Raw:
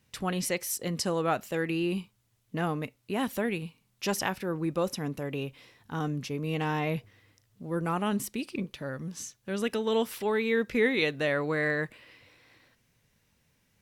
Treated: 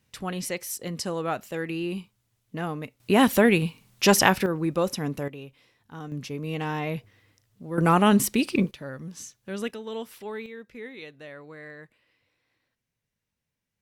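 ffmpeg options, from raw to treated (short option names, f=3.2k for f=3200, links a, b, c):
-af "asetnsamples=n=441:p=0,asendcmd='3 volume volume 11.5dB;4.46 volume volume 4dB;5.28 volume volume -7dB;6.12 volume volume 0dB;7.78 volume volume 10.5dB;8.71 volume volume -1dB;9.71 volume volume -7.5dB;10.46 volume volume -15dB',volume=-1dB"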